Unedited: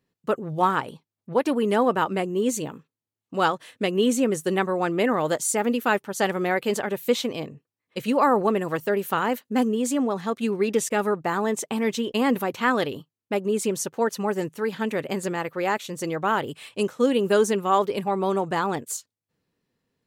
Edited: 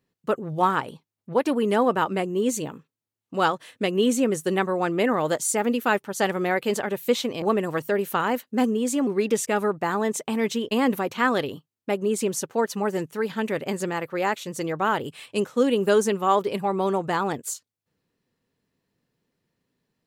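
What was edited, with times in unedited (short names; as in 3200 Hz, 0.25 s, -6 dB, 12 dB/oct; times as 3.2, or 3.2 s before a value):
7.42–8.4 cut
10.05–10.5 cut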